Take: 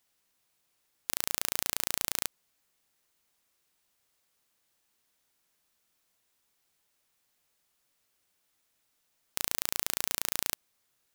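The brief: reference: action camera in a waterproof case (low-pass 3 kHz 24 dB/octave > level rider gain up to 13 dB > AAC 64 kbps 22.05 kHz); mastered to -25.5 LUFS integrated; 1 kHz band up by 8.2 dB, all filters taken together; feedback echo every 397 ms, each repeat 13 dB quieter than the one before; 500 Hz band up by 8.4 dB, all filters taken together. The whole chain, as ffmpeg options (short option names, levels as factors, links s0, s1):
-af "lowpass=f=3000:w=0.5412,lowpass=f=3000:w=1.3066,equalizer=f=500:t=o:g=8,equalizer=f=1000:t=o:g=8,aecho=1:1:397|794|1191:0.224|0.0493|0.0108,dynaudnorm=m=4.47,volume=4.22" -ar 22050 -c:a aac -b:a 64k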